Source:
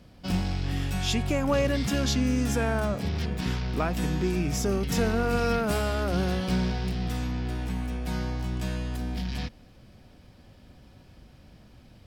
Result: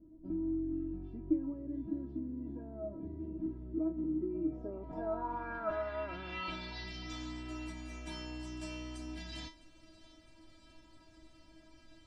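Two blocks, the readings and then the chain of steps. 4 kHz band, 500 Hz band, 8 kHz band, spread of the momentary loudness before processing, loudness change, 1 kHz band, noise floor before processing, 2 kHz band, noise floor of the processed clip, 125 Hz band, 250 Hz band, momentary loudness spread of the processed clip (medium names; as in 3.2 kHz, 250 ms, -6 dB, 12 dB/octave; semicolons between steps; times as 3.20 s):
-14.0 dB, -11.5 dB, -20.0 dB, 7 LU, -11.5 dB, -10.5 dB, -53 dBFS, -13.0 dB, -61 dBFS, -20.0 dB, -8.5 dB, 9 LU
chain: dynamic bell 1 kHz, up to +5 dB, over -41 dBFS, Q 1.3; compression, threshold -29 dBFS, peak gain reduction 10 dB; inharmonic resonator 320 Hz, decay 0.28 s, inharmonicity 0.002; low-pass sweep 330 Hz -> 8.7 kHz, 4.17–7.47 s; distance through air 60 m; feedback echo behind a high-pass 657 ms, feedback 69%, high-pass 2.8 kHz, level -19 dB; trim +10.5 dB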